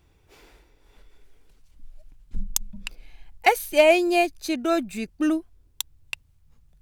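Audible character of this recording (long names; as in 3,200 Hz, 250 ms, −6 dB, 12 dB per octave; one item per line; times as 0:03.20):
background noise floor −61 dBFS
spectral slope −3.0 dB per octave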